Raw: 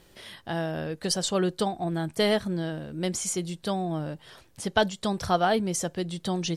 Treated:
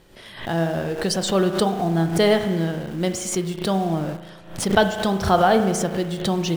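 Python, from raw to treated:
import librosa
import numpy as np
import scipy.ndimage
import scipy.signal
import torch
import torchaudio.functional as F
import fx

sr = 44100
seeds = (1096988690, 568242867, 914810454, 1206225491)

p1 = fx.high_shelf(x, sr, hz=3100.0, db=-6.0)
p2 = fx.rev_spring(p1, sr, rt60_s=1.3, pass_ms=(36,), chirp_ms=65, drr_db=7.0)
p3 = fx.quant_dither(p2, sr, seeds[0], bits=6, dither='none')
p4 = p2 + (p3 * librosa.db_to_amplitude(-11.0))
p5 = fx.pre_swell(p4, sr, db_per_s=110.0)
y = p5 * librosa.db_to_amplitude(4.0)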